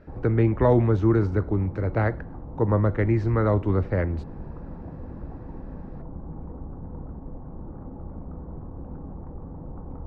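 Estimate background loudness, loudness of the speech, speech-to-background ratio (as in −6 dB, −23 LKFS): −40.0 LKFS, −23.5 LKFS, 16.5 dB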